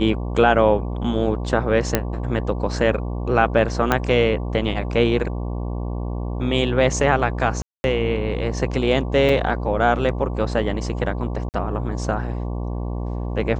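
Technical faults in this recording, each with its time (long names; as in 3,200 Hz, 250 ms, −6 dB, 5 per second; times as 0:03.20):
mains buzz 60 Hz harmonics 19 −26 dBFS
0:01.95: click −2 dBFS
0:03.92: click −4 dBFS
0:07.62–0:07.84: drop-out 221 ms
0:09.29: drop-out 4.3 ms
0:11.49–0:11.54: drop-out 49 ms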